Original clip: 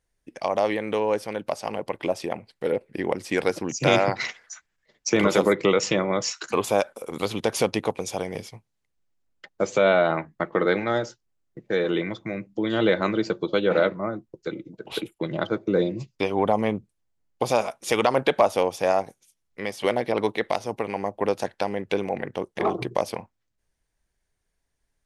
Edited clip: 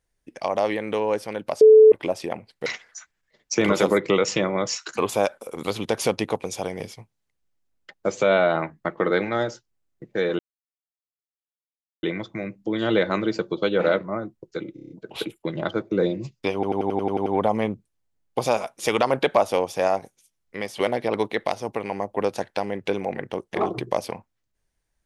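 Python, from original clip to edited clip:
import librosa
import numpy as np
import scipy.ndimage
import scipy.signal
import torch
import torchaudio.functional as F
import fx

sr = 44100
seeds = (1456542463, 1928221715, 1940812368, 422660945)

y = fx.edit(x, sr, fx.bleep(start_s=1.61, length_s=0.31, hz=435.0, db=-7.0),
    fx.cut(start_s=2.66, length_s=1.55),
    fx.insert_silence(at_s=11.94, length_s=1.64),
    fx.stutter(start_s=14.66, slice_s=0.03, count=6),
    fx.stutter(start_s=16.3, slice_s=0.09, count=9), tone=tone)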